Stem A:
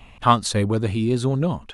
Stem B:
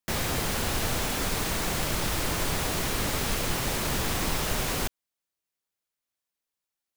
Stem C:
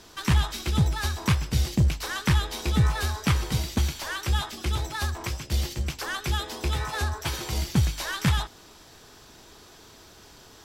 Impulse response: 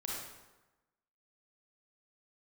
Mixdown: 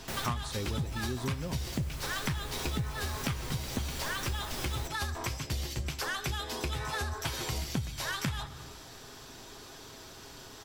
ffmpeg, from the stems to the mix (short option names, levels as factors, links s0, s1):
-filter_complex "[0:a]volume=0.422,asplit=2[s0][s1];[1:a]volume=0.398[s2];[2:a]volume=1.06,asplit=2[s3][s4];[s4]volume=0.168[s5];[s1]apad=whole_len=307069[s6];[s2][s6]sidechaincompress=threshold=0.0316:ratio=8:attack=16:release=632[s7];[3:a]atrim=start_sample=2205[s8];[s5][s8]afir=irnorm=-1:irlink=0[s9];[s0][s7][s3][s9]amix=inputs=4:normalize=0,aecho=1:1:7.5:0.31,acompressor=threshold=0.0282:ratio=6"